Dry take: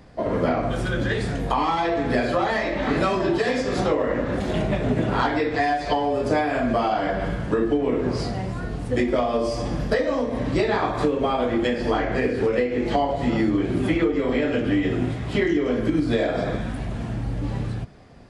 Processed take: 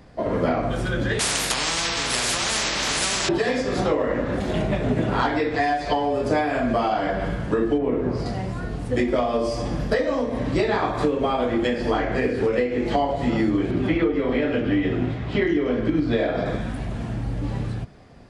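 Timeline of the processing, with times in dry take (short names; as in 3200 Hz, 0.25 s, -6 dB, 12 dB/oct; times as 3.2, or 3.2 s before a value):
1.19–3.29 spectral compressor 10:1
7.78–8.26 high shelf 2500 Hz -11.5 dB
13.71–16.46 LPF 4400 Hz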